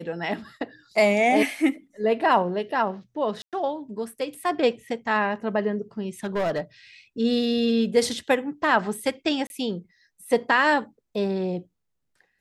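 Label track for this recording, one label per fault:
3.420000	3.530000	drop-out 107 ms
6.240000	6.610000	clipping −21 dBFS
9.470000	9.500000	drop-out 31 ms

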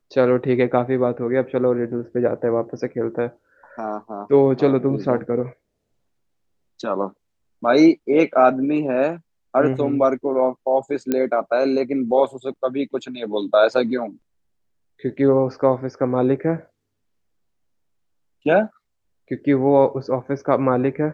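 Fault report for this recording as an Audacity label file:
11.120000	11.120000	click −8 dBFS

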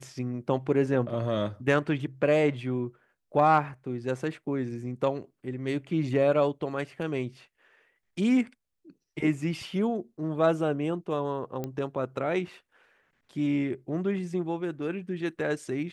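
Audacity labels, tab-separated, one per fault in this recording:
11.640000	11.640000	click −20 dBFS

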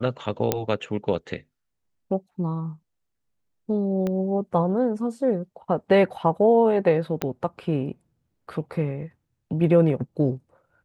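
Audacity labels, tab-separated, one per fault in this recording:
0.520000	0.520000	click −6 dBFS
4.070000	4.070000	click −16 dBFS
7.220000	7.220000	click −10 dBFS

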